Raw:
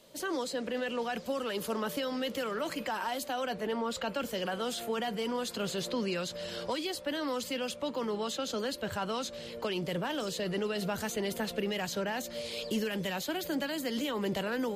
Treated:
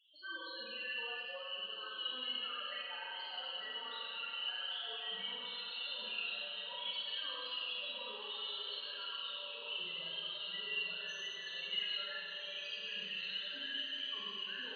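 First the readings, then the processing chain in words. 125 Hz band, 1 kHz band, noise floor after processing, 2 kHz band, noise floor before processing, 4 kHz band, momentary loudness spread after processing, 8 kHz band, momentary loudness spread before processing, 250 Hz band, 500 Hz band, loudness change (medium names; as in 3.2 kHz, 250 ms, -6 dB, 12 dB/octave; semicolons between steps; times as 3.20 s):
under -25 dB, -13.0 dB, -47 dBFS, -3.5 dB, -44 dBFS, +2.0 dB, 4 LU, under -20 dB, 2 LU, -28.0 dB, -20.0 dB, -5.5 dB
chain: peak limiter -30 dBFS, peak gain reduction 9 dB; band-pass filter 2.8 kHz, Q 2.1; loudest bins only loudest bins 4; echo that smears into a reverb 1578 ms, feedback 58%, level -8.5 dB; Schroeder reverb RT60 2.1 s, combs from 32 ms, DRR -6.5 dB; trim +4.5 dB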